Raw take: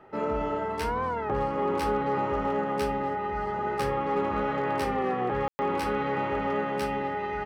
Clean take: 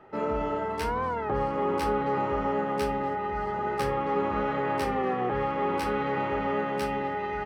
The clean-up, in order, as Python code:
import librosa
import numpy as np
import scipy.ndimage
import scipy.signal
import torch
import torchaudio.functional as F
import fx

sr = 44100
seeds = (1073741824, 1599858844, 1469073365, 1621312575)

y = fx.fix_declip(x, sr, threshold_db=-19.0)
y = fx.fix_ambience(y, sr, seeds[0], print_start_s=0.0, print_end_s=0.5, start_s=5.48, end_s=5.59)